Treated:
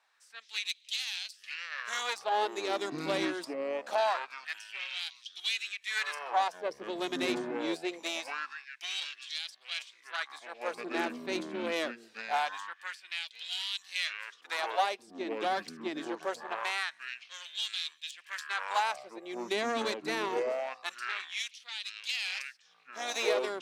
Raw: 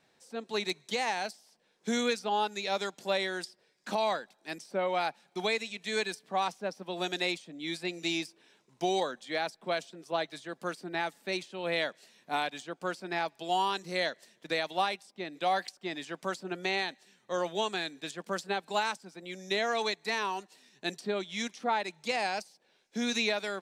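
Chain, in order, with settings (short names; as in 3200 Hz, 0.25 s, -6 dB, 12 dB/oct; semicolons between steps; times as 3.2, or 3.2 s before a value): echoes that change speed 0.109 s, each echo -7 st, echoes 3, each echo -6 dB; added harmonics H 6 -15 dB, 8 -30 dB, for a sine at -15 dBFS; LFO high-pass sine 0.24 Hz 250–3500 Hz; gain -4.5 dB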